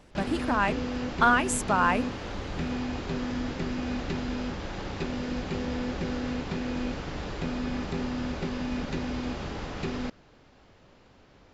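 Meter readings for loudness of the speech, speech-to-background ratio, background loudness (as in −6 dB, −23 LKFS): −26.0 LKFS, 7.0 dB, −33.0 LKFS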